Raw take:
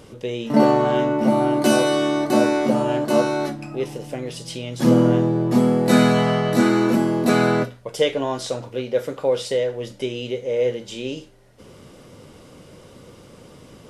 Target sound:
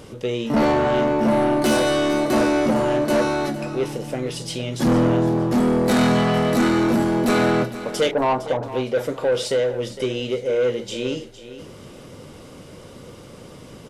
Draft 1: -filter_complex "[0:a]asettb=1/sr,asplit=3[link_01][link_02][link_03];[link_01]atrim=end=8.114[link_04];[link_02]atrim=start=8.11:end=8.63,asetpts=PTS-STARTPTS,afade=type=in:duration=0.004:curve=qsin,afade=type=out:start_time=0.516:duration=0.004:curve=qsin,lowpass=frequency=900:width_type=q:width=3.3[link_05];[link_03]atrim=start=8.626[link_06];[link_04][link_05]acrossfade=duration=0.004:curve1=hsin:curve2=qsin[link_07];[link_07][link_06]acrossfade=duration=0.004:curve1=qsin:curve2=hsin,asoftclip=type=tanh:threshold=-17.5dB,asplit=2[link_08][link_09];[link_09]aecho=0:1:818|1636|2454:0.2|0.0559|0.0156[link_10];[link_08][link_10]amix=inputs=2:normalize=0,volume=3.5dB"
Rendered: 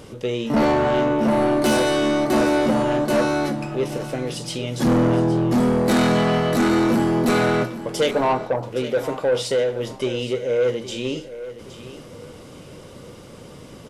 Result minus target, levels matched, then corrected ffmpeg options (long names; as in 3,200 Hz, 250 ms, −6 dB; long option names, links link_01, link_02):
echo 359 ms late
-filter_complex "[0:a]asettb=1/sr,asplit=3[link_01][link_02][link_03];[link_01]atrim=end=8.114[link_04];[link_02]atrim=start=8.11:end=8.63,asetpts=PTS-STARTPTS,afade=type=in:duration=0.004:curve=qsin,afade=type=out:start_time=0.516:duration=0.004:curve=qsin,lowpass=frequency=900:width_type=q:width=3.3[link_05];[link_03]atrim=start=8.626[link_06];[link_04][link_05]acrossfade=duration=0.004:curve1=hsin:curve2=qsin[link_07];[link_07][link_06]acrossfade=duration=0.004:curve1=qsin:curve2=hsin,asoftclip=type=tanh:threshold=-17.5dB,asplit=2[link_08][link_09];[link_09]aecho=0:1:459|918|1377:0.2|0.0559|0.0156[link_10];[link_08][link_10]amix=inputs=2:normalize=0,volume=3.5dB"